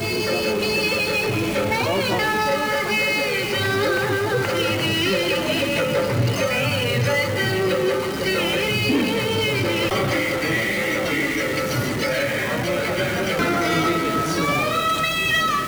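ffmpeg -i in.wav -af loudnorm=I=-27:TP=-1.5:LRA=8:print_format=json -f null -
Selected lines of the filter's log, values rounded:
"input_i" : "-20.5",
"input_tp" : "-11.6",
"input_lra" : "0.9",
"input_thresh" : "-30.5",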